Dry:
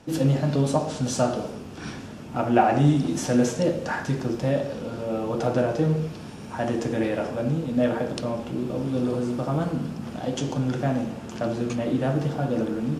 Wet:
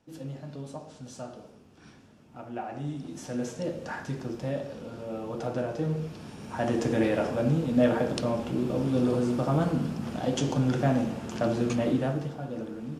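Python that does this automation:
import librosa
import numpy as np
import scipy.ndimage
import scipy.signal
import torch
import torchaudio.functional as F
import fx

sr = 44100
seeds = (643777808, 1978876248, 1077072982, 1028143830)

y = fx.gain(x, sr, db=fx.line((2.66, -17.5), (3.84, -8.0), (5.72, -8.0), (6.91, 0.0), (11.87, 0.0), (12.37, -10.5)))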